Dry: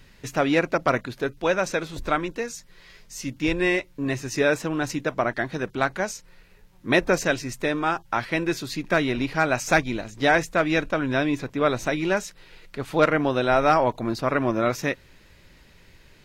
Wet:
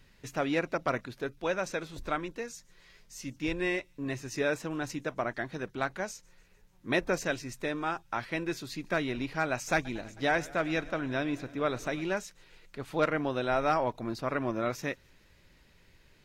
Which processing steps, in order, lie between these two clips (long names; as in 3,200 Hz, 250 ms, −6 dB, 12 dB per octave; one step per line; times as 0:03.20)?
delay with a high-pass on its return 148 ms, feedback 61%, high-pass 5,600 Hz, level −24 dB
0:09.74–0:12.03: feedback echo with a swinging delay time 106 ms, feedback 77%, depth 80 cents, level −21 dB
level −8.5 dB